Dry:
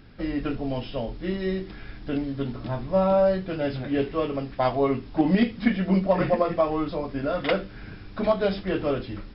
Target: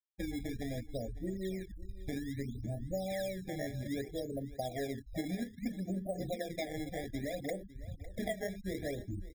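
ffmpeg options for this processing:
-filter_complex "[0:a]afftfilt=real='re*gte(hypot(re,im),0.0708)':imag='im*gte(hypot(re,im),0.0708)':win_size=1024:overlap=0.75,lowpass=2700,equalizer=f=81:w=1.7:g=8,acompressor=threshold=0.0251:ratio=5,acrusher=samples=20:mix=1:aa=0.000001:lfo=1:lforange=32:lforate=0.62,asplit=2[s0][s1];[s1]aecho=0:1:554:0.133[s2];[s0][s2]amix=inputs=2:normalize=0,afftfilt=real='re*eq(mod(floor(b*sr/1024/810),2),0)':imag='im*eq(mod(floor(b*sr/1024/810),2),0)':win_size=1024:overlap=0.75,volume=0.668"

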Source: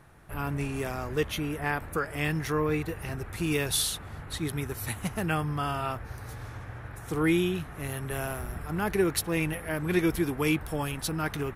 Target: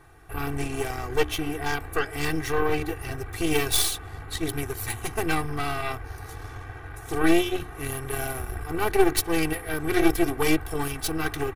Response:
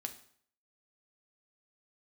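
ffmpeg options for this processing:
-af "bandreject=f=60:t=h:w=6,bandreject=f=120:t=h:w=6,bandreject=f=180:t=h:w=6,bandreject=f=240:t=h:w=6,bandreject=f=300:t=h:w=6,bandreject=f=360:t=h:w=6,aeval=exprs='0.188*(cos(1*acos(clip(val(0)/0.188,-1,1)))-cos(1*PI/2))+0.0596*(cos(4*acos(clip(val(0)/0.188,-1,1)))-cos(4*PI/2))':c=same,aecho=1:1:2.6:0.95"

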